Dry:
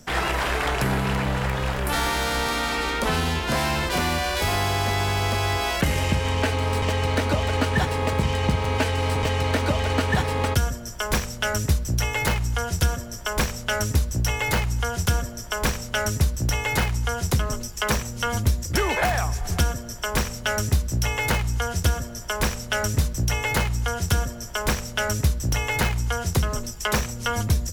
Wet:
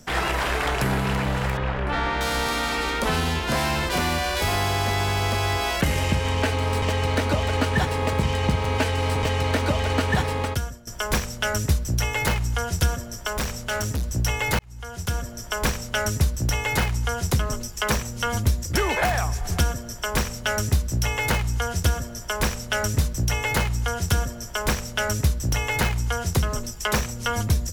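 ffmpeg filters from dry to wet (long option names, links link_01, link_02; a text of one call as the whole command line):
ffmpeg -i in.wav -filter_complex "[0:a]asettb=1/sr,asplit=3[link_01][link_02][link_03];[link_01]atrim=end=1.574[link_04];[link_02]atrim=start=1.57:end=2.21,asetpts=PTS-STARTPTS,afade=type=in:duration=0.004:curve=qsin,afade=type=out:start_time=0.636:duration=0.004:curve=qsin,lowpass=2700[link_05];[link_03]atrim=start=2.206[link_06];[link_04][link_05]acrossfade=duration=0.004:curve1=hsin:curve2=qsin[link_07];[link_07][link_06]acrossfade=duration=0.004:curve1=qsin:curve2=hsin,asettb=1/sr,asplit=3[link_08][link_09][link_10];[link_08]atrim=end=13.274[link_11];[link_09]atrim=start=13.27:end=14.05,asetpts=PTS-STARTPTS,afade=type=in:duration=0.004:curve=qsin,afade=type=out:start_time=0.776:duration=0.004:curve=qsin,asoftclip=type=hard:threshold=-22.5dB[link_12];[link_10]atrim=start=14.046[link_13];[link_11][link_12]acrossfade=duration=0.004:curve1=hsin:curve2=qsin[link_14];[link_14][link_13]acrossfade=duration=0.004:curve1=qsin:curve2=hsin,asplit=3[link_15][link_16][link_17];[link_15]atrim=end=10.87,asetpts=PTS-STARTPTS,afade=type=out:start_time=10.25:duration=0.62:silence=0.188365[link_18];[link_16]atrim=start=10.87:end=14.59,asetpts=PTS-STARTPTS,afade=type=in:duration=0.004:curve=hsin:silence=0.188365,afade=type=out:start_time=3.716:duration=0.004:curve=hsin[link_19];[link_17]atrim=start=14.59,asetpts=PTS-STARTPTS,afade=type=in:duration=0.88[link_20];[link_18][link_19][link_20]concat=n=3:v=0:a=1" out.wav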